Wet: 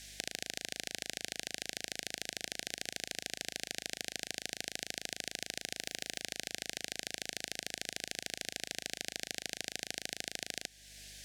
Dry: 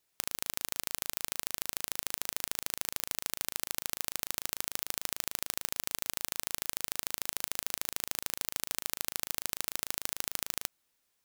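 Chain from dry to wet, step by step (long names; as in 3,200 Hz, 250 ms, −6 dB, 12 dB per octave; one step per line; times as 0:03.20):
0:02.35–0:02.87: samples sorted by size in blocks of 256 samples
background noise blue −54 dBFS
band-pass filter 140–6,000 Hz
mains hum 50 Hz, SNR 29 dB
downward compressor 2 to 1, threshold −54 dBFS, peak gain reduction 11.5 dB
0:05.78–0:06.19: surface crackle 560 per second −60 dBFS
elliptic band-stop filter 740–1,600 Hz, stop band 60 dB
level +12.5 dB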